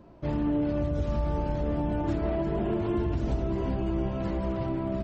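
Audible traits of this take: noise floor -34 dBFS; spectral tilt -5.5 dB/octave

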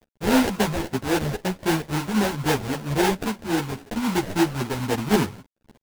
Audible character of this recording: a quantiser's noise floor 8-bit, dither none; phasing stages 2, 3.7 Hz, lowest notch 360–1300 Hz; aliases and images of a low sample rate 1.2 kHz, jitter 20%; a shimmering, thickened sound

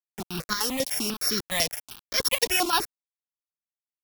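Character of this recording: a buzz of ramps at a fixed pitch in blocks of 8 samples; chopped level 3.3 Hz, depth 65%, duty 75%; a quantiser's noise floor 6-bit, dither none; notches that jump at a steady rate 10 Hz 360–2700 Hz

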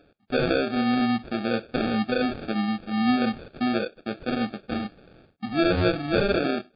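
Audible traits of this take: aliases and images of a low sample rate 1 kHz, jitter 0%; MP3

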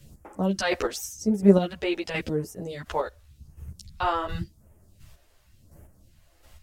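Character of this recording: phasing stages 2, 0.9 Hz, lowest notch 140–3900 Hz; chopped level 1.4 Hz, depth 60%, duty 20%; a shimmering, thickened sound

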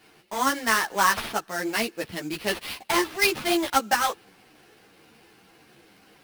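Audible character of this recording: aliases and images of a low sample rate 7.2 kHz, jitter 20%; a shimmering, thickened sound

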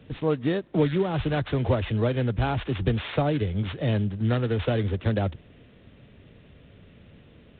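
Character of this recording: a buzz of ramps at a fixed pitch in blocks of 8 samples; G.726

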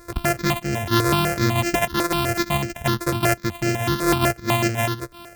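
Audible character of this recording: a buzz of ramps at a fixed pitch in blocks of 128 samples; random-step tremolo; notches that jump at a steady rate 8 Hz 800–3600 Hz

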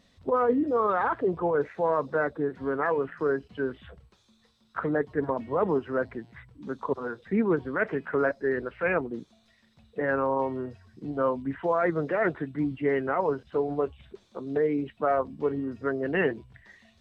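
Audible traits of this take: noise floor -65 dBFS; spectral tilt -2.0 dB/octave

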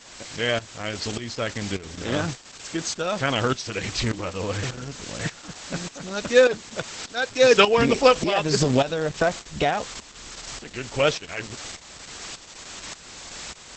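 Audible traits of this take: a quantiser's noise floor 6-bit, dither triangular; tremolo saw up 1.7 Hz, depth 75%; Opus

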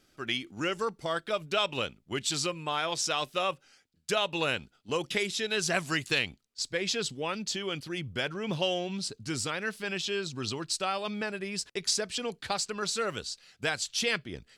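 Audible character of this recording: noise floor -69 dBFS; spectral tilt -2.5 dB/octave

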